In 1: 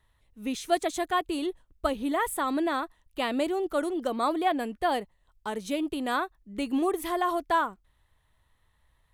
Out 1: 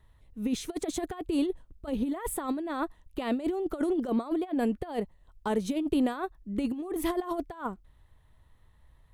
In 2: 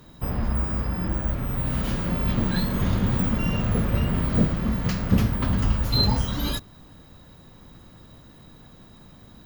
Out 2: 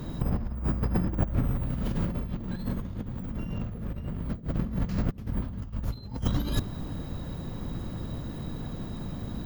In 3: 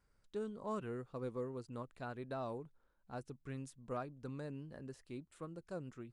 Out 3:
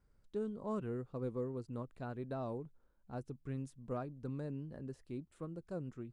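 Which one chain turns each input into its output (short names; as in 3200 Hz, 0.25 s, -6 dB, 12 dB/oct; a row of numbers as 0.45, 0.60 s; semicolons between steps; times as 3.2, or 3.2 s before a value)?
negative-ratio compressor -31 dBFS, ratio -0.5; tilt shelf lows +5 dB, about 680 Hz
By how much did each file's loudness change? -2.5, -8.0, +2.5 LU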